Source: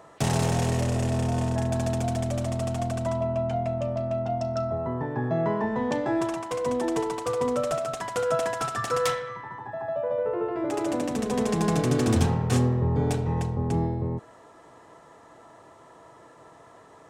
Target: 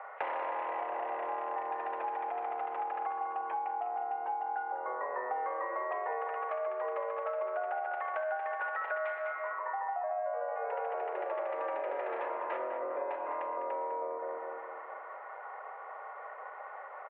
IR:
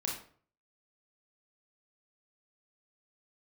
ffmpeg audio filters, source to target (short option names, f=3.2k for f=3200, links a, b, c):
-filter_complex "[0:a]highpass=f=390:t=q:w=0.5412,highpass=f=390:t=q:w=1.307,lowpass=f=2.2k:t=q:w=0.5176,lowpass=f=2.2k:t=q:w=0.7071,lowpass=f=2.2k:t=q:w=1.932,afreqshift=130,asplit=2[a][b];[b]adelay=202,lowpass=f=1.6k:p=1,volume=-5dB,asplit=2[c][d];[d]adelay=202,lowpass=f=1.6k:p=1,volume=0.51,asplit=2[e][f];[f]adelay=202,lowpass=f=1.6k:p=1,volume=0.51,asplit=2[g][h];[h]adelay=202,lowpass=f=1.6k:p=1,volume=0.51,asplit=2[i][j];[j]adelay=202,lowpass=f=1.6k:p=1,volume=0.51,asplit=2[k][l];[l]adelay=202,lowpass=f=1.6k:p=1,volume=0.51[m];[a][c][e][g][i][k][m]amix=inputs=7:normalize=0,asplit=2[n][o];[1:a]atrim=start_sample=2205,adelay=83[p];[o][p]afir=irnorm=-1:irlink=0,volume=-17dB[q];[n][q]amix=inputs=2:normalize=0,acompressor=threshold=-39dB:ratio=6,volume=5.5dB"